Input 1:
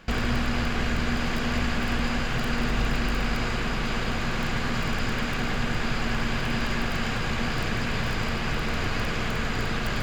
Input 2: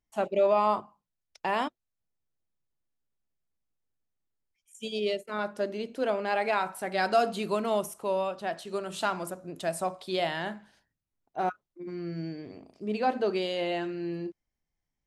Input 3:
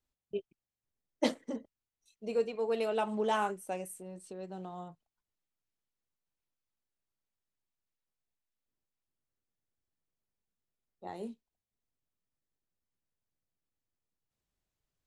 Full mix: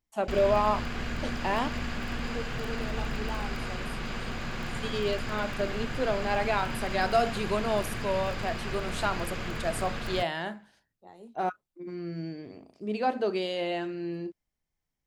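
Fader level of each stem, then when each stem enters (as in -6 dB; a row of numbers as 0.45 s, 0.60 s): -7.5 dB, -0.5 dB, -8.0 dB; 0.20 s, 0.00 s, 0.00 s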